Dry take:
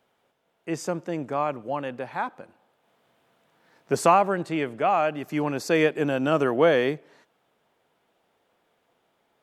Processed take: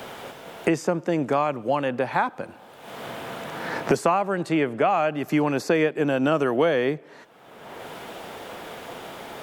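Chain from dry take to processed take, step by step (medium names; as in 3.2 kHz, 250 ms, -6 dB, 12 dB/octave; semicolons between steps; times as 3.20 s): three bands compressed up and down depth 100%; trim +1.5 dB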